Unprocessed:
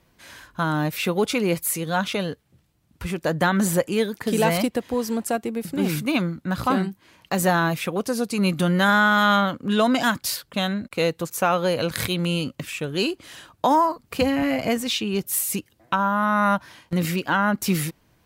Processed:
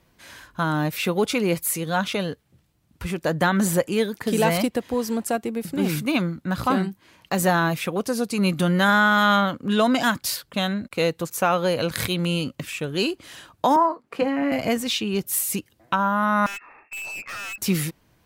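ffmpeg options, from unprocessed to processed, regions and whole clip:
ffmpeg -i in.wav -filter_complex "[0:a]asettb=1/sr,asplit=3[link_01][link_02][link_03];[link_01]atrim=end=13.764[link_04];[link_02]atrim=start=13.76:end=14.52,asetpts=PTS-STARTPTS,afade=type=in:duration=0.004:curve=qsin,afade=type=out:start_time=0.756:duration=0.004:curve=qsin,lowpass=11000,acrossover=split=210 2300:gain=0.0708 1 0.224[link_05][link_06][link_07];[link_05][link_06][link_07]amix=inputs=3:normalize=0,asplit=2[link_08][link_09];[link_09]adelay=21,volume=-12dB[link_10];[link_08][link_10]amix=inputs=2:normalize=0,atrim=end_sample=33516[link_11];[link_03]atrim=start=14.516[link_12];[link_04][link_11]acrossfade=duration=0.004:curve1=hsin:curve2=qsin[link_13];[link_13][link_12]acrossfade=duration=0.004:curve1=qsin:curve2=hsin,asettb=1/sr,asplit=3[link_14][link_15][link_16];[link_14]atrim=end=16.464[link_17];[link_15]atrim=start=16.46:end=17.58,asetpts=PTS-STARTPTS,afade=type=in:duration=0.004:curve=qsin,afade=type=out:start_time=1.116:duration=0.004:curve=qsin,lowpass=frequency=2400:width_type=q:width=0.5098,lowpass=frequency=2400:width_type=q:width=0.6013,lowpass=frequency=2400:width_type=q:width=0.9,lowpass=frequency=2400:width_type=q:width=2.563,afreqshift=-2800,aeval=exprs='(tanh(39.8*val(0)+0.15)-tanh(0.15))/39.8':channel_layout=same[link_18];[link_16]atrim=start=17.576[link_19];[link_17][link_18]acrossfade=duration=0.004:curve1=hsin:curve2=qsin[link_20];[link_20][link_19]acrossfade=duration=0.004:curve1=qsin:curve2=hsin" out.wav

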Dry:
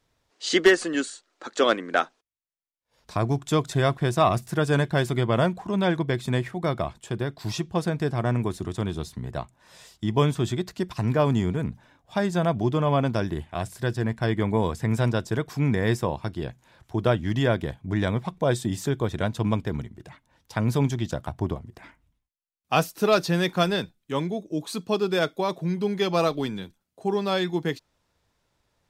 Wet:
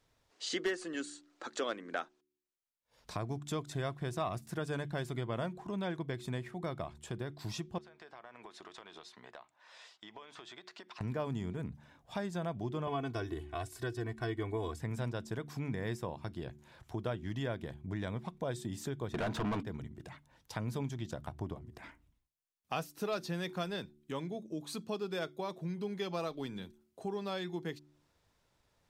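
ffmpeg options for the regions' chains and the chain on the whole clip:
ffmpeg -i in.wav -filter_complex "[0:a]asettb=1/sr,asplit=3[link_01][link_02][link_03];[link_01]atrim=end=7.784[link_04];[link_02]atrim=start=7.78:end=11.01,asetpts=PTS-STARTPTS,afade=type=in:duration=0.004:curve=qsin,afade=type=out:start_time=3.226:duration=0.004:curve=qsin,highpass=730,lowpass=4100,acompressor=threshold=-43dB:ratio=16:attack=3.2:release=140:knee=1:detection=peak[link_05];[link_03]atrim=start=11.006[link_06];[link_04][link_05]acrossfade=duration=0.004:curve1=hsin:curve2=qsin[link_07];[link_07][link_06]acrossfade=duration=0.004:curve1=qsin:curve2=hsin,asettb=1/sr,asplit=3[link_08][link_09][link_10];[link_08]atrim=end=12.874[link_11];[link_09]atrim=start=12.87:end=14.79,asetpts=PTS-STARTPTS,afade=type=in:duration=0.004:curve=qsin,afade=type=out:start_time=1.916:duration=0.004:curve=qsin,bandreject=frequency=780:width=17,aecho=1:1:2.7:0.91,atrim=end_sample=84672[link_12];[link_10]atrim=start=14.786[link_13];[link_11][link_12]acrossfade=duration=0.004:curve1=hsin:curve2=qsin[link_14];[link_14][link_13]acrossfade=duration=0.004:curve1=qsin:curve2=hsin,asettb=1/sr,asplit=3[link_15][link_16][link_17];[link_15]atrim=end=19.144[link_18];[link_16]atrim=start=19.14:end=19.63,asetpts=PTS-STARTPTS,afade=type=in:duration=0.004:curve=qsin,afade=type=out:start_time=0.486:duration=0.004:curve=qsin,asplit=2[link_19][link_20];[link_20]highpass=frequency=720:poles=1,volume=33dB,asoftclip=type=tanh:threshold=-9.5dB[link_21];[link_19][link_21]amix=inputs=2:normalize=0,lowpass=frequency=1300:poles=1,volume=-6dB,equalizer=frequency=520:width=7.7:gain=-6[link_22];[link_17]atrim=start=19.626[link_23];[link_18][link_22]acrossfade=duration=0.004:curve1=hsin:curve2=qsin[link_24];[link_24][link_23]acrossfade=duration=0.004:curve1=qsin:curve2=hsin,bandreject=frequency=73.23:width_type=h:width=4,bandreject=frequency=146.46:width_type=h:width=4,bandreject=frequency=219.69:width_type=h:width=4,bandreject=frequency=292.92:width_type=h:width=4,bandreject=frequency=366.15:width_type=h:width=4,acompressor=threshold=-41dB:ratio=2,volume=-2.5dB" out.wav

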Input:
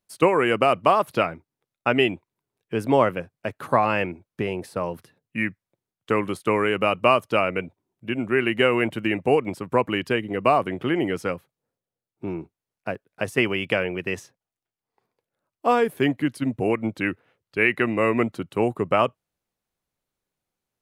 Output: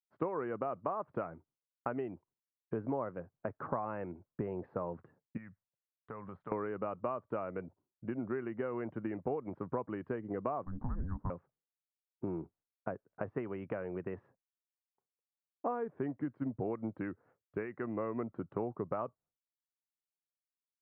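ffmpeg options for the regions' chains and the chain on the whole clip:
ffmpeg -i in.wav -filter_complex "[0:a]asettb=1/sr,asplit=3[link_01][link_02][link_03];[link_01]atrim=end=5.374[link_04];[link_02]atrim=start=5.37:end=6.52,asetpts=PTS-STARTPTS,afade=type=in:duration=0.004:curve=qsin,afade=type=out:start_time=1.146:duration=0.004:curve=qsin,equalizer=frequency=330:width=1.9:gain=-13,acompressor=threshold=-40dB:ratio=4:attack=3.2:release=140:knee=1:detection=peak[link_05];[link_03]atrim=start=6.516[link_06];[link_04][link_05]acrossfade=duration=0.004:curve1=hsin:curve2=qsin[link_07];[link_07][link_06]acrossfade=duration=0.004:curve1=qsin:curve2=hsin,asettb=1/sr,asplit=3[link_08][link_09][link_10];[link_08]atrim=end=10.654[link_11];[link_09]atrim=start=10.65:end=11.3,asetpts=PTS-STARTPTS,afade=type=in:duration=0.004:curve=qsin,afade=type=out:start_time=0.646:duration=0.004:curve=qsin,lowpass=frequency=1500:width=0.5412,lowpass=frequency=1500:width=1.3066,afreqshift=-380[link_12];[link_10]atrim=start=11.296[link_13];[link_11][link_12]acrossfade=duration=0.004:curve1=hsin:curve2=qsin[link_14];[link_14][link_13]acrossfade=duration=0.004:curve1=qsin:curve2=hsin,acompressor=threshold=-31dB:ratio=5,lowpass=frequency=1400:width=0.5412,lowpass=frequency=1400:width=1.3066,agate=range=-33dB:threshold=-59dB:ratio=3:detection=peak,volume=-3dB" out.wav

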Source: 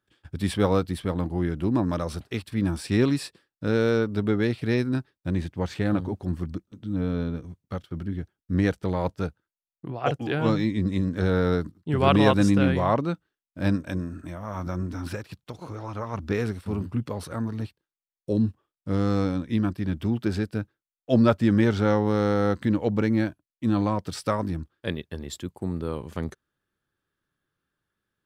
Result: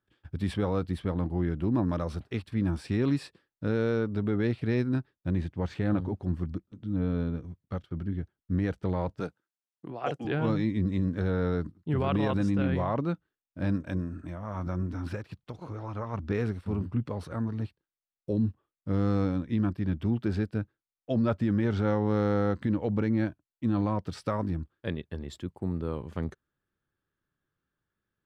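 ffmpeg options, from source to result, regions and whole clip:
ffmpeg -i in.wav -filter_complex "[0:a]asettb=1/sr,asplit=3[link_01][link_02][link_03];[link_01]atrim=end=9.204[link_04];[link_02]atrim=start=9.2:end=10.25,asetpts=PTS-STARTPTS,afade=type=in:duration=0.004:curve=qsin,afade=type=out:start_time=1.046:duration=0.004:curve=qsin,highpass=210,equalizer=frequency=8800:width=0.63:gain=8[link_05];[link_03]atrim=start=10.246[link_06];[link_04][link_05]acrossfade=duration=0.004:curve1=hsin:curve2=qsin[link_07];[link_07][link_06]acrossfade=duration=0.004:curve1=qsin:curve2=hsin,lowpass=frequency=1800:poles=1,equalizer=frequency=560:width=0.3:gain=-3,alimiter=limit=-18dB:level=0:latency=1:release=34" out.wav

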